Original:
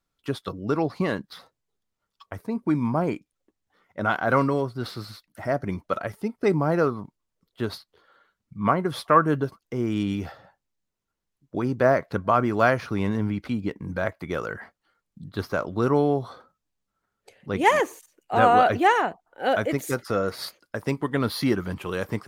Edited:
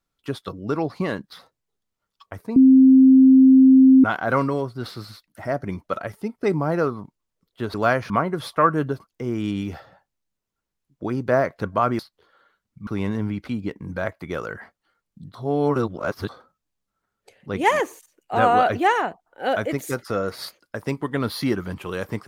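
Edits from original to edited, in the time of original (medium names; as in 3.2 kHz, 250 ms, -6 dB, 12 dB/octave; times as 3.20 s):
2.56–4.04 s: bleep 263 Hz -8 dBFS
7.74–8.62 s: swap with 12.51–12.87 s
15.35–16.29 s: reverse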